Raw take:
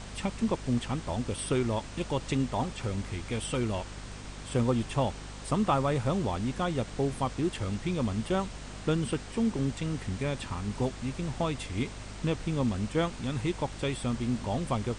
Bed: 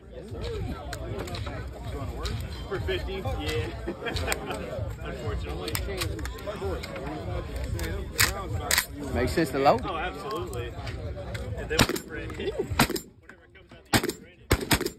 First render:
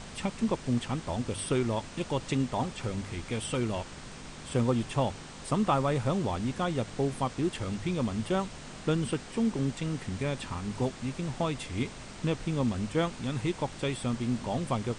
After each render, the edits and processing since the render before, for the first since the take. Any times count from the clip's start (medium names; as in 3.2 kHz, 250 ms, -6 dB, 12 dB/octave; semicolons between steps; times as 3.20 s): hum notches 50/100 Hz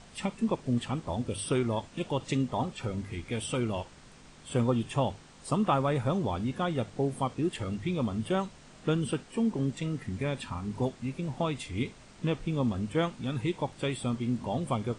noise print and reduce 9 dB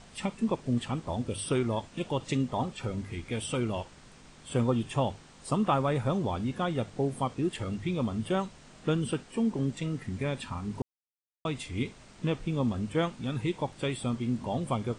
10.82–11.45 s: mute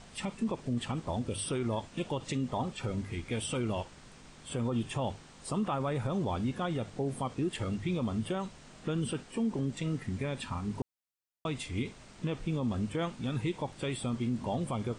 peak limiter -23.5 dBFS, peak gain reduction 9 dB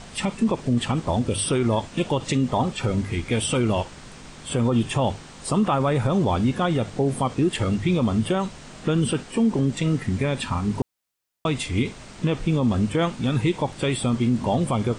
trim +11 dB